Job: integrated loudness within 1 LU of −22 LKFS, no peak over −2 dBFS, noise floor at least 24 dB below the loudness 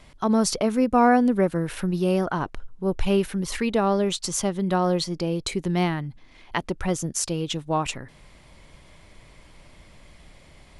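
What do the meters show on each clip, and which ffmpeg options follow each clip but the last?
integrated loudness −24.0 LKFS; sample peak −7.0 dBFS; target loudness −22.0 LKFS
→ -af "volume=2dB"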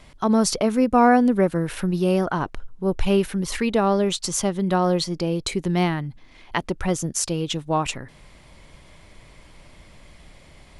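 integrated loudness −22.0 LKFS; sample peak −5.0 dBFS; background noise floor −50 dBFS

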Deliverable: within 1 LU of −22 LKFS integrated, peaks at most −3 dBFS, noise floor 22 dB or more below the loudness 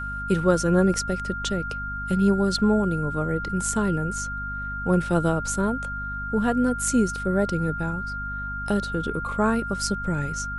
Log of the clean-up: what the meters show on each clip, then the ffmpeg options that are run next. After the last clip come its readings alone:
mains hum 50 Hz; hum harmonics up to 250 Hz; level of the hum −33 dBFS; interfering tone 1,400 Hz; level of the tone −30 dBFS; integrated loudness −24.5 LKFS; sample peak −7.0 dBFS; target loudness −22.0 LKFS
→ -af "bandreject=frequency=50:width_type=h:width=6,bandreject=frequency=100:width_type=h:width=6,bandreject=frequency=150:width_type=h:width=6,bandreject=frequency=200:width_type=h:width=6,bandreject=frequency=250:width_type=h:width=6"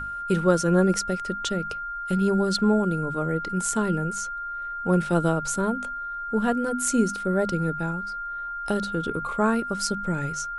mains hum none found; interfering tone 1,400 Hz; level of the tone −30 dBFS
→ -af "bandreject=frequency=1400:width=30"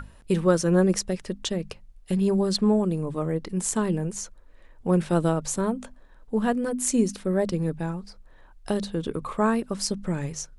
interfering tone none found; integrated loudness −26.0 LKFS; sample peak −8.0 dBFS; target loudness −22.0 LKFS
→ -af "volume=4dB"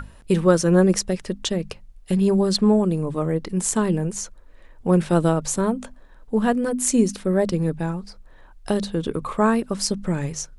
integrated loudness −22.0 LKFS; sample peak −4.0 dBFS; background noise floor −48 dBFS

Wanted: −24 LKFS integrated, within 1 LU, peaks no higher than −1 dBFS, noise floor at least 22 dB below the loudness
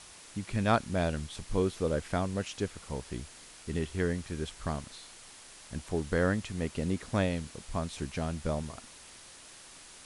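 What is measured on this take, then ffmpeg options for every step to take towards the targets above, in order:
background noise floor −52 dBFS; target noise floor −56 dBFS; integrated loudness −33.5 LKFS; sample peak −13.0 dBFS; target loudness −24.0 LKFS
→ -af "afftdn=noise_reduction=6:noise_floor=-52"
-af "volume=9.5dB"

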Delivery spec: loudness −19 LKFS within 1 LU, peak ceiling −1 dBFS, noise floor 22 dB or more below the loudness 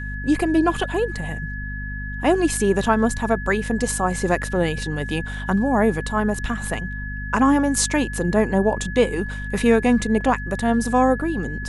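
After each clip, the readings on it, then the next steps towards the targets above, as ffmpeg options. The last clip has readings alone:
mains hum 50 Hz; hum harmonics up to 250 Hz; level of the hum −28 dBFS; interfering tone 1,700 Hz; level of the tone −32 dBFS; integrated loudness −21.5 LKFS; sample peak −3.5 dBFS; target loudness −19.0 LKFS
→ -af "bandreject=frequency=50:width_type=h:width=6,bandreject=frequency=100:width_type=h:width=6,bandreject=frequency=150:width_type=h:width=6,bandreject=frequency=200:width_type=h:width=6,bandreject=frequency=250:width_type=h:width=6"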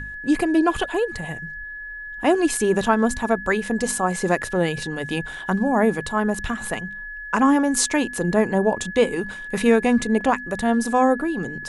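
mains hum none found; interfering tone 1,700 Hz; level of the tone −32 dBFS
→ -af "bandreject=frequency=1700:width=30"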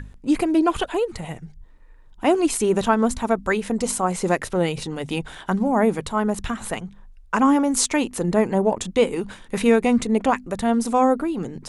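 interfering tone none found; integrated loudness −21.5 LKFS; sample peak −4.5 dBFS; target loudness −19.0 LKFS
→ -af "volume=2.5dB"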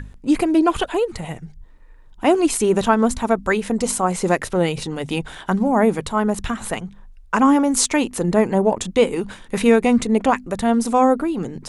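integrated loudness −19.0 LKFS; sample peak −2.0 dBFS; background noise floor −44 dBFS

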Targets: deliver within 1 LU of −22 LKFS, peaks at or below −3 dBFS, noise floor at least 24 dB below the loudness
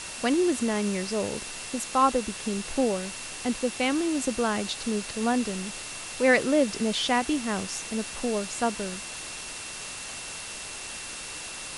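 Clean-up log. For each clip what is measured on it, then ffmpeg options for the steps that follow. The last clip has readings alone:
interfering tone 2,700 Hz; level of the tone −44 dBFS; background noise floor −38 dBFS; target noise floor −52 dBFS; integrated loudness −28.0 LKFS; sample peak −9.5 dBFS; target loudness −22.0 LKFS
→ -af "bandreject=frequency=2700:width=30"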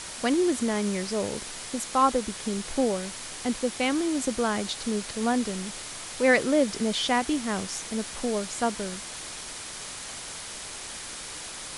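interfering tone none found; background noise floor −39 dBFS; target noise floor −52 dBFS
→ -af "afftdn=noise_reduction=13:noise_floor=-39"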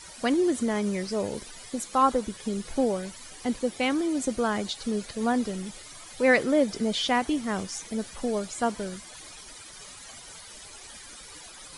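background noise floor −46 dBFS; target noise floor −52 dBFS
→ -af "afftdn=noise_reduction=6:noise_floor=-46"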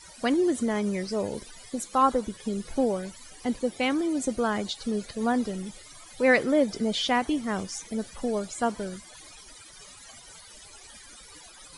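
background noise floor −49 dBFS; target noise floor −52 dBFS
→ -af "afftdn=noise_reduction=6:noise_floor=-49"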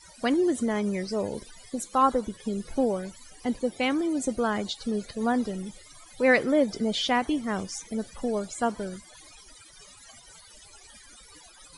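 background noise floor −52 dBFS; integrated loudness −27.5 LKFS; sample peak −9.5 dBFS; target loudness −22.0 LKFS
→ -af "volume=5.5dB"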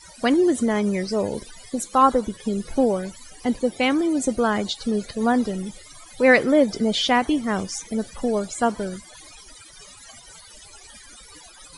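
integrated loudness −22.0 LKFS; sample peak −4.0 dBFS; background noise floor −46 dBFS

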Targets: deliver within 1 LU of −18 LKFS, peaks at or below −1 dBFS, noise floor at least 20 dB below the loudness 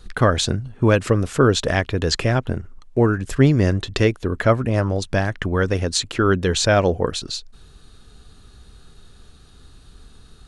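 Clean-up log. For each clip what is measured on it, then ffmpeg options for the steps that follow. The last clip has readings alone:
integrated loudness −20.0 LKFS; sample peak −1.5 dBFS; target loudness −18.0 LKFS
→ -af "volume=2dB,alimiter=limit=-1dB:level=0:latency=1"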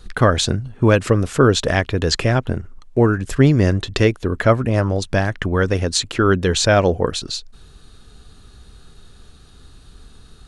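integrated loudness −18.0 LKFS; sample peak −1.0 dBFS; background noise floor −46 dBFS

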